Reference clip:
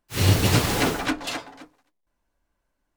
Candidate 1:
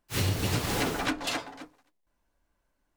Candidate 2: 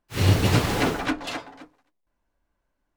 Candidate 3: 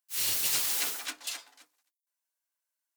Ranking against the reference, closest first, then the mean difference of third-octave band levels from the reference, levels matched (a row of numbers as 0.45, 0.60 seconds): 2, 1, 3; 2.0, 4.0, 11.0 decibels